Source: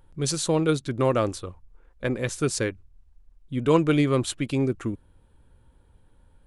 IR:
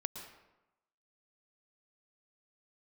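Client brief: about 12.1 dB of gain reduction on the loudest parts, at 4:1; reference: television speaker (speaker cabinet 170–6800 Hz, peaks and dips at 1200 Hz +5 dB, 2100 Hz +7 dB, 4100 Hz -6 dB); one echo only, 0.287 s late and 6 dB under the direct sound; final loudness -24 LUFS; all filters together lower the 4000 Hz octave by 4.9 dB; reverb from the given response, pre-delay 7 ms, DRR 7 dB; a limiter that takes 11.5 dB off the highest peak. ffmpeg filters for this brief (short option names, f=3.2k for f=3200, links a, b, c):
-filter_complex "[0:a]equalizer=f=4k:t=o:g=-3.5,acompressor=threshold=-30dB:ratio=4,alimiter=level_in=7.5dB:limit=-24dB:level=0:latency=1,volume=-7.5dB,aecho=1:1:287:0.501,asplit=2[a][b];[1:a]atrim=start_sample=2205,adelay=7[c];[b][c]afir=irnorm=-1:irlink=0,volume=-6.5dB[d];[a][d]amix=inputs=2:normalize=0,highpass=f=170:w=0.5412,highpass=f=170:w=1.3066,equalizer=f=1.2k:t=q:w=4:g=5,equalizer=f=2.1k:t=q:w=4:g=7,equalizer=f=4.1k:t=q:w=4:g=-6,lowpass=f=6.8k:w=0.5412,lowpass=f=6.8k:w=1.3066,volume=16.5dB"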